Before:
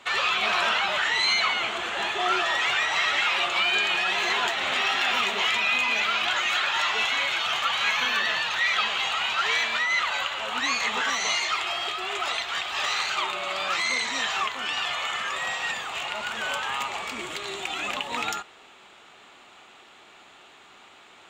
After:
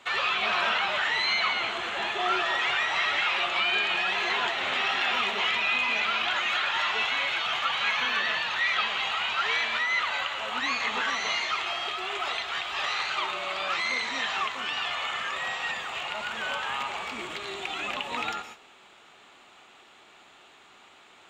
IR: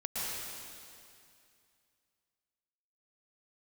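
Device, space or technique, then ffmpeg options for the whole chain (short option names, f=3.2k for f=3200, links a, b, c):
keyed gated reverb: -filter_complex "[0:a]asplit=3[a][b][c];[1:a]atrim=start_sample=2205[d];[b][d]afir=irnorm=-1:irlink=0[e];[c]apad=whole_len=939128[f];[e][f]sidechaingate=range=-33dB:threshold=-46dB:ratio=16:detection=peak,volume=-15.5dB[g];[a][g]amix=inputs=2:normalize=0,acrossover=split=4800[h][i];[i]acompressor=threshold=-48dB:ratio=4:attack=1:release=60[j];[h][j]amix=inputs=2:normalize=0,volume=-3dB"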